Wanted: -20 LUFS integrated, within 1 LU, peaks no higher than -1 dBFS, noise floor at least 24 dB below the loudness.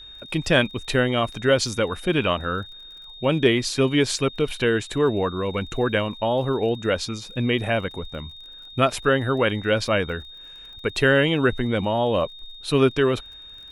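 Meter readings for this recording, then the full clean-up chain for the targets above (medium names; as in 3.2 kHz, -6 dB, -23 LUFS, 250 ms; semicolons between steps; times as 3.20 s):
tick rate 32 per s; steady tone 3.7 kHz; tone level -40 dBFS; loudness -22.5 LUFS; peak level -5.0 dBFS; loudness target -20.0 LUFS
-> de-click; band-stop 3.7 kHz, Q 30; trim +2.5 dB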